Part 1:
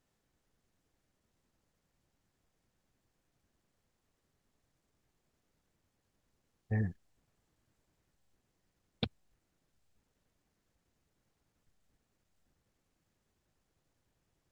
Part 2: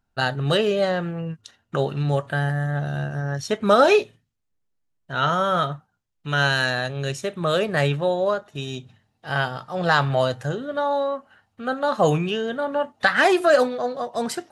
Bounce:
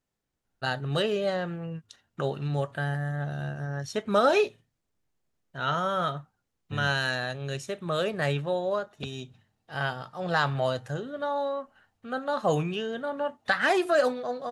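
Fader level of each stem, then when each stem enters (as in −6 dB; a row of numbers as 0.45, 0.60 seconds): −5.0, −6.5 decibels; 0.00, 0.45 seconds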